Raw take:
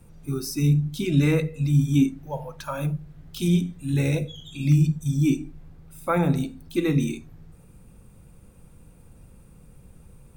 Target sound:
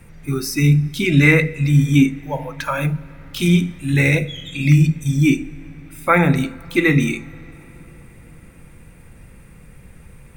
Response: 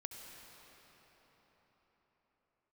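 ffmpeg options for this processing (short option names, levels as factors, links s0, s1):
-filter_complex "[0:a]equalizer=f=2000:t=o:w=0.77:g=14.5,asplit=2[s0][s1];[1:a]atrim=start_sample=2205[s2];[s1][s2]afir=irnorm=-1:irlink=0,volume=0.2[s3];[s0][s3]amix=inputs=2:normalize=0,volume=1.78"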